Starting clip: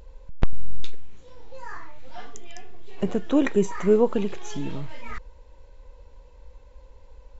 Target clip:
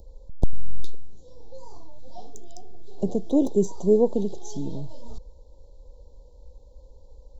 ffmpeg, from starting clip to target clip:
ffmpeg -i in.wav -filter_complex "[0:a]acrossover=split=220|1600[link_01][link_02][link_03];[link_03]asoftclip=type=hard:threshold=-31.5dB[link_04];[link_01][link_02][link_04]amix=inputs=3:normalize=0,asuperstop=centerf=1800:order=8:qfactor=0.58" out.wav

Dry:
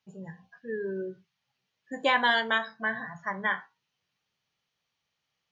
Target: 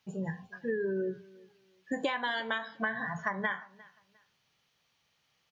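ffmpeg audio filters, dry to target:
ffmpeg -i in.wav -af "acompressor=threshold=-36dB:ratio=20,aecho=1:1:353|706:0.0708|0.0177,volume=7.5dB" out.wav

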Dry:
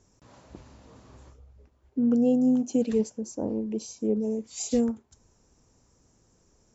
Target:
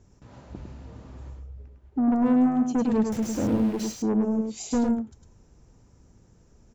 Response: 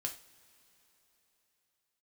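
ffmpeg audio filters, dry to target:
-filter_complex "[0:a]asettb=1/sr,asplit=3[link_01][link_02][link_03];[link_01]atrim=end=3.124[link_04];[link_02]atrim=start=3.12:end=3.92,asetpts=PTS-STARTPTS,afade=type=in:duration=0.004:curve=qsin,afade=type=out:start_time=0.796:duration=0.004:curve=qsin,aeval=exprs='val(0)+0.5*0.0224*sgn(val(0))':channel_layout=same[link_05];[link_03]atrim=start=3.916[link_06];[link_04][link_05]acrossfade=duration=0.004:curve1=hsin:curve2=qsin[link_07];[link_07][link_06]acrossfade=duration=0.004:curve1=qsin:curve2=hsin,bass=frequency=250:gain=7,treble=frequency=4000:gain=-7,bandreject=frequency=1100:width=17,asoftclip=type=tanh:threshold=-21.5dB,asplit=2[link_08][link_09];[link_09]aecho=0:1:104:0.596[link_10];[link_08][link_10]amix=inputs=2:normalize=0,volume=2dB"

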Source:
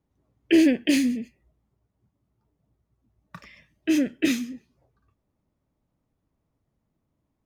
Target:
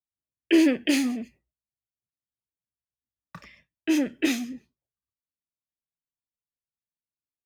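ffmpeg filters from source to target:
ffmpeg -i in.wav -filter_complex "[0:a]agate=range=-33dB:threshold=-46dB:ratio=3:detection=peak,acrossover=split=200[link_01][link_02];[link_01]aeval=exprs='0.01*(abs(mod(val(0)/0.01+3,4)-2)-1)':channel_layout=same[link_03];[link_03][link_02]amix=inputs=2:normalize=0" out.wav

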